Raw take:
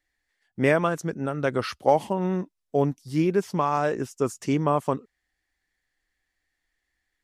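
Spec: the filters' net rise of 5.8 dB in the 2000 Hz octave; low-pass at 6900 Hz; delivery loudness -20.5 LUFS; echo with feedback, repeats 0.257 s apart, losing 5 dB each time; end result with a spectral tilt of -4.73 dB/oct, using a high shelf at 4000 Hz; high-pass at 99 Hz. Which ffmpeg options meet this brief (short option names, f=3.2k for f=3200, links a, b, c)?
-af "highpass=99,lowpass=6.9k,equalizer=f=2k:t=o:g=5.5,highshelf=f=4k:g=8,aecho=1:1:257|514|771|1028|1285|1542|1799:0.562|0.315|0.176|0.0988|0.0553|0.031|0.0173,volume=3dB"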